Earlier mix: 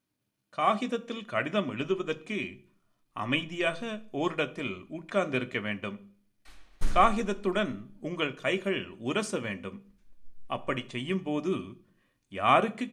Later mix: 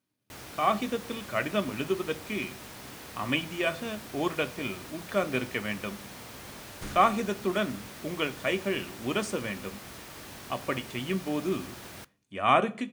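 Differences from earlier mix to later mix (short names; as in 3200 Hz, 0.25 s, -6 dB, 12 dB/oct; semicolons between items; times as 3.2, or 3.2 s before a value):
first sound: unmuted; master: add HPF 75 Hz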